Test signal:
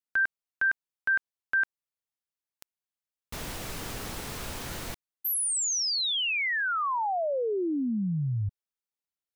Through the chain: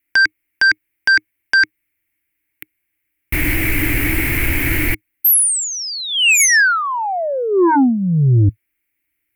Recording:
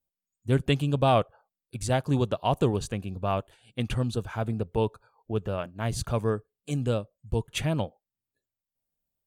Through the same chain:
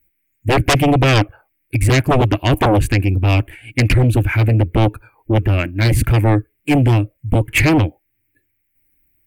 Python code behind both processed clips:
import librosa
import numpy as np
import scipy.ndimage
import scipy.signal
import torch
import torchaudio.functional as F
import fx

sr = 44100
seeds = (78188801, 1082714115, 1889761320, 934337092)

y = fx.curve_eq(x, sr, hz=(110.0, 210.0, 310.0, 440.0, 1200.0, 2200.0, 3700.0, 6500.0, 13000.0), db=(0, -14, 6, -14, -15, 8, -20, -19, 0))
y = fx.fold_sine(y, sr, drive_db=13, ceiling_db=-15.0)
y = y * 10.0 ** (6.0 / 20.0)